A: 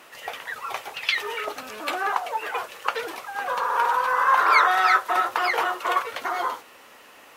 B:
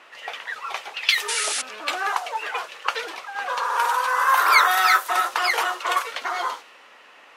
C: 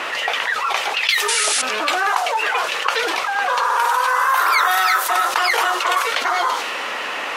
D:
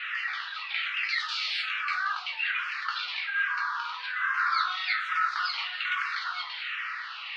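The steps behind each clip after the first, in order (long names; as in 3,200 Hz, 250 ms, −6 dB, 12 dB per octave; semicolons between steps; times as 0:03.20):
RIAA equalisation recording; low-pass that shuts in the quiet parts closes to 2,400 Hz, open at −15 dBFS; sound drawn into the spectrogram noise, 0:01.28–0:01.62, 1,300–11,000 Hz −26 dBFS
envelope flattener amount 70%; level −2.5 dB
Chebyshev band-pass filter 1,300–4,500 Hz, order 3; rectangular room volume 40 cubic metres, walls mixed, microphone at 0.63 metres; frequency shifter mixed with the dry sound −1.2 Hz; level −8.5 dB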